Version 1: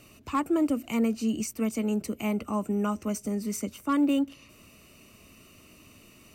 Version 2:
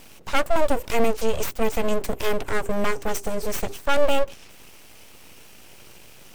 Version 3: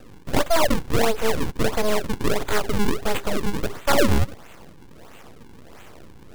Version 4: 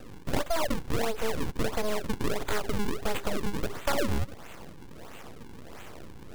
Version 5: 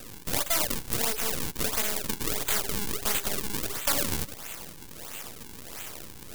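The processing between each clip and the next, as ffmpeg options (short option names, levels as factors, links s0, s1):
-af "bandreject=f=50:t=h:w=6,bandreject=f=100:t=h:w=6,bandreject=f=150:t=h:w=6,bandreject=f=200:t=h:w=6,aeval=exprs='abs(val(0))':c=same,volume=2.82"
-filter_complex "[0:a]acrossover=split=390|570|3000[s0][s1][s2][s3];[s0]alimiter=limit=0.112:level=0:latency=1[s4];[s4][s1][s2][s3]amix=inputs=4:normalize=0,acrusher=samples=40:mix=1:aa=0.000001:lfo=1:lforange=64:lforate=1.5,volume=1.41"
-af "acompressor=threshold=0.0631:ratio=5"
-filter_complex "[0:a]asplit=2[s0][s1];[s1]aeval=exprs='(mod(15*val(0)+1,2)-1)/15':c=same,volume=0.631[s2];[s0][s2]amix=inputs=2:normalize=0,crystalizer=i=6:c=0,volume=0.501"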